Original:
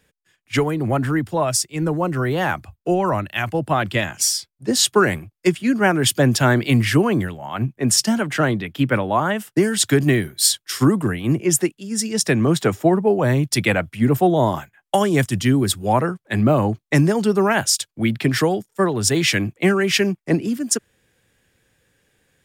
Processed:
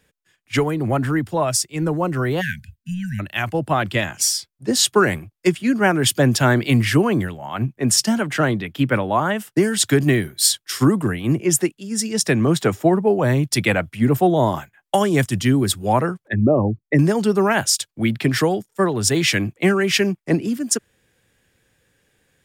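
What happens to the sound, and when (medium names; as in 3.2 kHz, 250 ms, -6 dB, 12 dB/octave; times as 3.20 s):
2.41–3.20 s: spectral selection erased 250–1500 Hz
16.28–16.99 s: resonances exaggerated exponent 2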